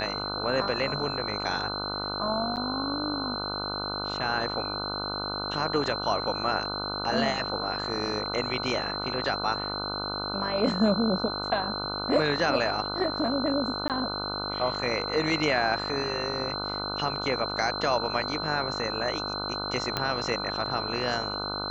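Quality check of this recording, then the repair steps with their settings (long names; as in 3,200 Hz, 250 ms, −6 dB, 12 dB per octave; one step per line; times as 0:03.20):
mains buzz 50 Hz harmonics 30 −35 dBFS
whistle 4,100 Hz −33 dBFS
0:02.56–0:02.57: drop-out 8.3 ms
0:13.88–0:13.90: drop-out 18 ms
0:19.97: click −12 dBFS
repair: click removal
hum removal 50 Hz, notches 30
notch filter 4,100 Hz, Q 30
repair the gap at 0:02.56, 8.3 ms
repair the gap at 0:13.88, 18 ms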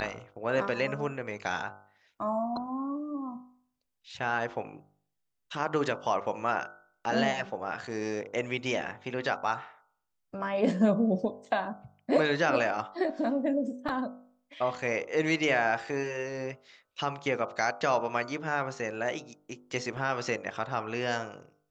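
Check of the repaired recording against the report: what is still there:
0:19.97: click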